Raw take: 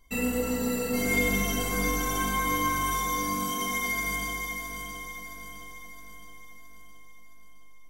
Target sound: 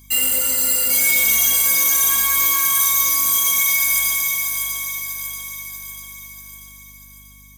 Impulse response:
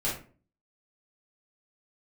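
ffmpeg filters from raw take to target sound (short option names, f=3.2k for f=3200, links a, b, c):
-filter_complex "[0:a]highpass=68,equalizer=f=180:w=0.37:g=-10.5,asoftclip=type=tanh:threshold=-23dB,acrossover=split=100[a][b];[b]crystalizer=i=9.5:c=0[c];[a][c]amix=inputs=2:normalize=0,asetrate=45938,aresample=44100,asplit=2[d][e];[e]volume=20dB,asoftclip=hard,volume=-20dB,volume=-11dB[f];[d][f]amix=inputs=2:normalize=0,aeval=exprs='val(0)+0.00562*(sin(2*PI*50*n/s)+sin(2*PI*2*50*n/s)/2+sin(2*PI*3*50*n/s)/3+sin(2*PI*4*50*n/s)/4+sin(2*PI*5*50*n/s)/5)':c=same,volume=-2dB"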